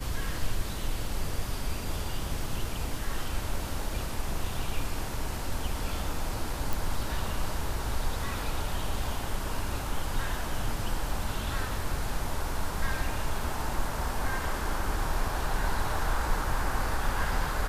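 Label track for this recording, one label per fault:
6.730000	6.730000	pop

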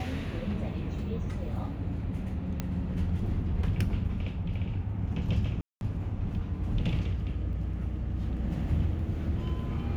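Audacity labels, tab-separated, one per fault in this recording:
2.600000	2.600000	pop -17 dBFS
5.610000	5.810000	dropout 201 ms
7.530000	7.530000	dropout 2 ms

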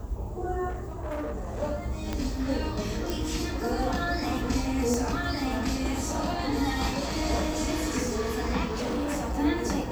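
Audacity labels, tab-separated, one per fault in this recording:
0.690000	1.610000	clipped -29.5 dBFS
2.130000	2.130000	pop -16 dBFS
3.100000	3.100000	pop
4.940000	4.940000	pop -15 dBFS
8.730000	9.400000	clipped -26 dBFS

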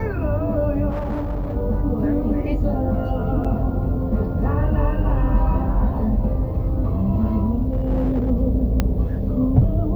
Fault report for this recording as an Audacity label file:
0.890000	1.570000	clipped -21 dBFS
3.440000	3.450000	dropout 6.2 ms
7.730000	8.310000	clipped -16 dBFS
8.800000	8.800000	pop -6 dBFS

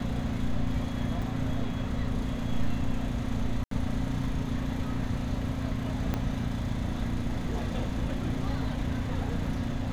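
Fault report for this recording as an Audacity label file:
1.220000	1.220000	dropout 4.1 ms
3.640000	3.710000	dropout 73 ms
6.140000	6.140000	pop -16 dBFS

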